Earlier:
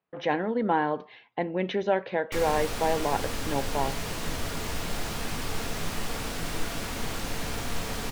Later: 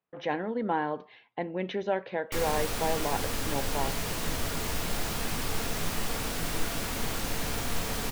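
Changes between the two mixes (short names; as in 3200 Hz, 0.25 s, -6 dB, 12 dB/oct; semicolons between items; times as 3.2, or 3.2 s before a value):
speech -4.0 dB; background: add high shelf 11000 Hz +8 dB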